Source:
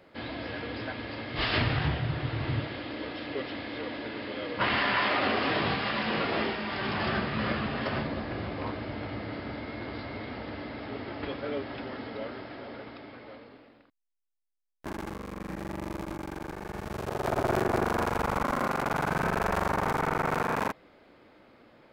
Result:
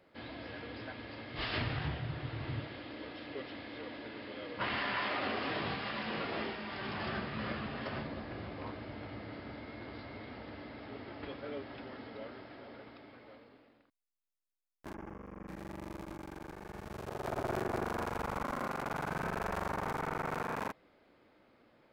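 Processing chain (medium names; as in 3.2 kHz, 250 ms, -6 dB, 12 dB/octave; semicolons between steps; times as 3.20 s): 14.94–15.48 s: boxcar filter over 11 samples; trim -8.5 dB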